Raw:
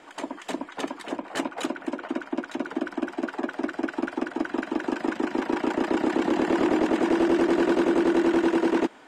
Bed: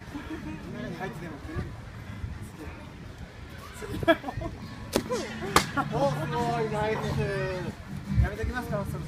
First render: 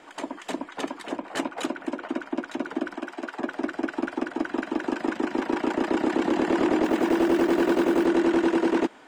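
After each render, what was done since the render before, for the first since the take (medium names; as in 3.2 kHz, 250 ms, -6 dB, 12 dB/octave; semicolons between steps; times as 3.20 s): 2.96–3.40 s: bass shelf 370 Hz -10.5 dB; 6.84–8.06 s: short-mantissa float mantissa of 4-bit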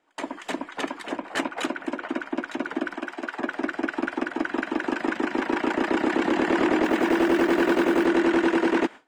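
gate with hold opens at -32 dBFS; dynamic bell 1.9 kHz, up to +6 dB, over -43 dBFS, Q 0.89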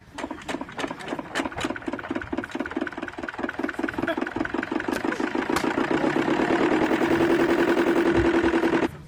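add bed -7 dB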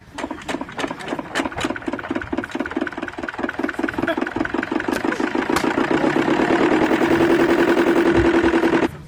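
trim +5 dB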